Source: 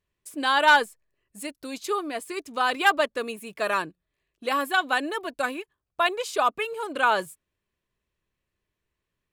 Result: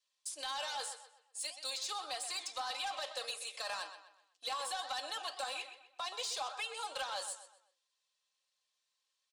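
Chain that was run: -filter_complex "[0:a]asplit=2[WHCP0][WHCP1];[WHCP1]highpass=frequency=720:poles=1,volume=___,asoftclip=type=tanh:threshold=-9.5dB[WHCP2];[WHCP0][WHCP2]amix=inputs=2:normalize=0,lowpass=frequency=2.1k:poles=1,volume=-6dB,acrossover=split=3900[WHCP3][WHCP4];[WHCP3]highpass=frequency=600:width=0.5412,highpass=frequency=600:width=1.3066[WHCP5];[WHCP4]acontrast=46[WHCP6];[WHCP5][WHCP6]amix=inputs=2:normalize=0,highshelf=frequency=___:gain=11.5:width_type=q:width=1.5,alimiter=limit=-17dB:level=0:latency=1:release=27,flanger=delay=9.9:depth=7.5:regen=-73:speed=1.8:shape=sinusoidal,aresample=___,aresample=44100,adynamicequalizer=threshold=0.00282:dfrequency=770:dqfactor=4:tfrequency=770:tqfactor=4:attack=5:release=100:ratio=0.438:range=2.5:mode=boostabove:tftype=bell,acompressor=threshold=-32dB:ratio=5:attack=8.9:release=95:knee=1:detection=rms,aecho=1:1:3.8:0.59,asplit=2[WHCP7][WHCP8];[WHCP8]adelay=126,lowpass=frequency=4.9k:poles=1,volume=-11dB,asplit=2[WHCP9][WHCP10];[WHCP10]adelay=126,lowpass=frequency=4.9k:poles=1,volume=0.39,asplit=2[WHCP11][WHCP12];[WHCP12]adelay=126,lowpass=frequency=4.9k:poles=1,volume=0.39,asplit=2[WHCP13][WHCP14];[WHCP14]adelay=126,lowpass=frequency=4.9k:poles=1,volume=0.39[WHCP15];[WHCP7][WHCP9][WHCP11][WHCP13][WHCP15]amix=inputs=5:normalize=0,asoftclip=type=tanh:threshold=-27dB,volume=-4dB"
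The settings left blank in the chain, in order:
10dB, 3k, 22050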